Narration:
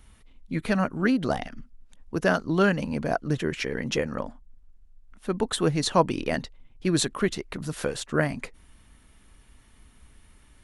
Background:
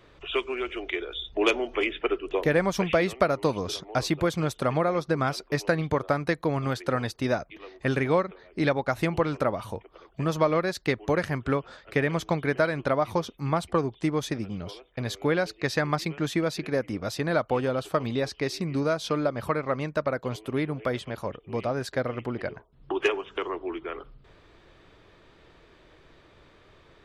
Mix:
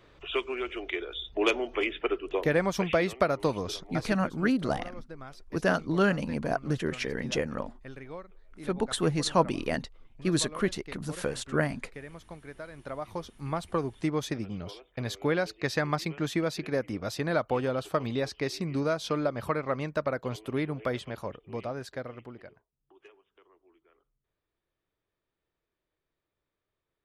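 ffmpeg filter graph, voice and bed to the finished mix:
-filter_complex "[0:a]adelay=3400,volume=0.708[s0];[1:a]volume=5.01,afade=t=out:st=3.67:d=0.52:silence=0.149624,afade=t=in:st=12.68:d=1.45:silence=0.149624,afade=t=out:st=20.96:d=1.81:silence=0.0375837[s1];[s0][s1]amix=inputs=2:normalize=0"

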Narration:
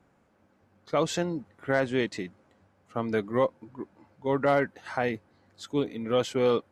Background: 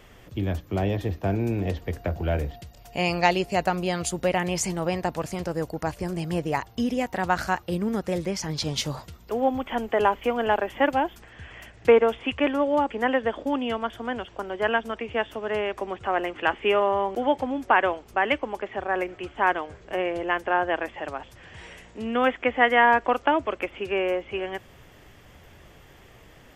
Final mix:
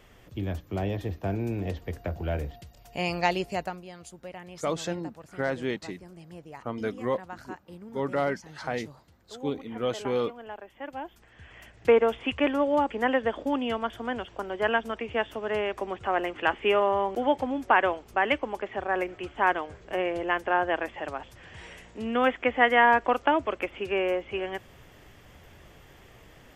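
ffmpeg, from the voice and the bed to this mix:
-filter_complex "[0:a]adelay=3700,volume=0.668[s0];[1:a]volume=3.98,afade=t=out:st=3.47:d=0.36:silence=0.211349,afade=t=in:st=10.82:d=1.38:silence=0.149624[s1];[s0][s1]amix=inputs=2:normalize=0"

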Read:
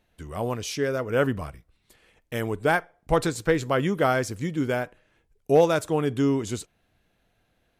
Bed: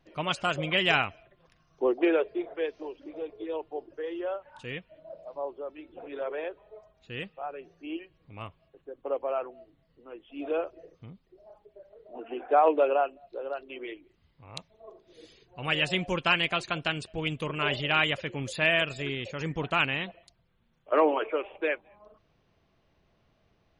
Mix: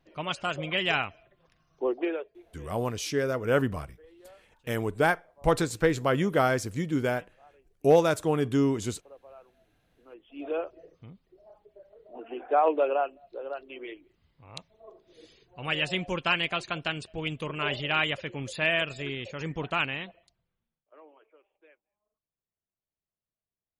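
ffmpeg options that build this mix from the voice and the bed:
-filter_complex "[0:a]adelay=2350,volume=0.841[s0];[1:a]volume=6.31,afade=t=out:st=1.93:d=0.4:silence=0.133352,afade=t=in:st=9.53:d=0.96:silence=0.11885,afade=t=out:st=19.7:d=1.16:silence=0.0334965[s1];[s0][s1]amix=inputs=2:normalize=0"

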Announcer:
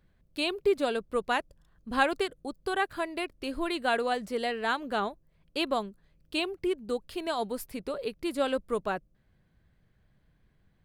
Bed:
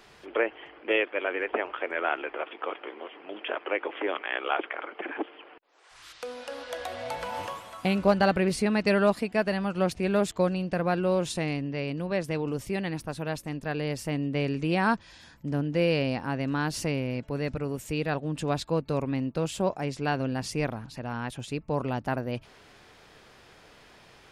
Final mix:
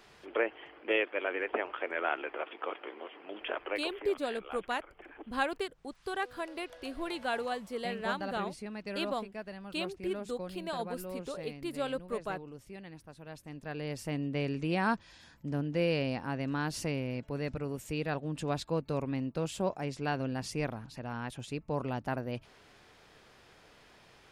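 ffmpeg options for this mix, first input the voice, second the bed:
-filter_complex "[0:a]adelay=3400,volume=0.501[s0];[1:a]volume=2.37,afade=t=out:st=3.57:d=0.52:silence=0.237137,afade=t=in:st=13.23:d=0.9:silence=0.266073[s1];[s0][s1]amix=inputs=2:normalize=0"

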